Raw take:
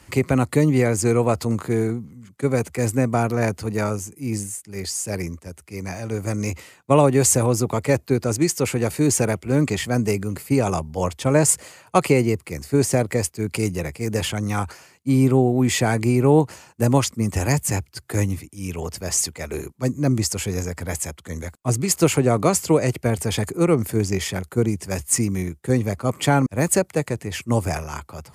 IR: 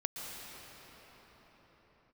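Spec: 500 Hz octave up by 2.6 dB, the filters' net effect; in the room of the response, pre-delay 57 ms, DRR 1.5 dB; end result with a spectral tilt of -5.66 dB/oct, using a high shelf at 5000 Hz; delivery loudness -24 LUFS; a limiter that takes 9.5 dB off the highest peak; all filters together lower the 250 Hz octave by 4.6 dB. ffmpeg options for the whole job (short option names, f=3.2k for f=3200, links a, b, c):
-filter_complex "[0:a]equalizer=f=250:t=o:g=-8,equalizer=f=500:t=o:g=5.5,highshelf=f=5k:g=-7.5,alimiter=limit=-11dB:level=0:latency=1,asplit=2[a][b];[1:a]atrim=start_sample=2205,adelay=57[c];[b][c]afir=irnorm=-1:irlink=0,volume=-4dB[d];[a][d]amix=inputs=2:normalize=0,volume=-2.5dB"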